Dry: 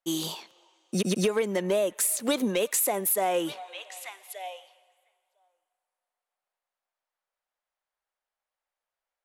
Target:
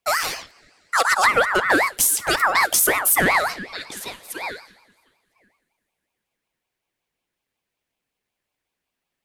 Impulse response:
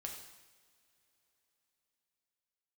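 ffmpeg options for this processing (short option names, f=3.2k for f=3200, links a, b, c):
-filter_complex "[0:a]asettb=1/sr,asplit=3[a][b][c];[a]atrim=end=1.764[d];[b]atrim=start=1.76:end=2.35,asetpts=PTS-STARTPTS,afade=t=in:d=0.004:c=qsin,afade=t=out:st=0.586:d=0.004:c=qsin,lowshelf=f=380:g=-10[e];[c]atrim=start=2.346[f];[d][e]acrossfade=d=0.004:c1=hsin:c2=qsin[g];[g][f]acrossfade=d=0.004:c1=qsin:c2=hsin,asplit=2[h][i];[1:a]atrim=start_sample=2205,atrim=end_sample=3528[j];[i][j]afir=irnorm=-1:irlink=0,volume=-7.5dB[k];[h][k]amix=inputs=2:normalize=0,aeval=exprs='val(0)*sin(2*PI*1300*n/s+1300*0.3/5.4*sin(2*PI*5.4*n/s))':c=same,volume=9dB"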